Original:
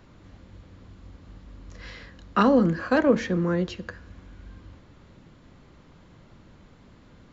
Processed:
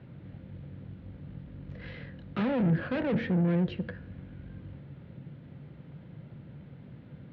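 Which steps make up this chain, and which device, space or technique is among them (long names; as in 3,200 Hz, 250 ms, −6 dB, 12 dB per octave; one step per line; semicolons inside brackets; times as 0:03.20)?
guitar amplifier (tube saturation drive 30 dB, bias 0.5; bass and treble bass +9 dB, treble −7 dB; loudspeaker in its box 110–3,700 Hz, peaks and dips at 140 Hz +9 dB, 520 Hz +4 dB, 1,100 Hz −9 dB)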